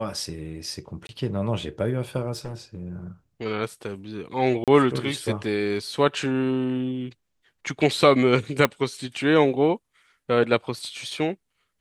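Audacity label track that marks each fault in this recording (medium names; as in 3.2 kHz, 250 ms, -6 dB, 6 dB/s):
1.070000	1.090000	dropout 21 ms
2.360000	2.800000	clipped -28.5 dBFS
4.640000	4.680000	dropout 37 ms
8.650000	8.650000	pop -5 dBFS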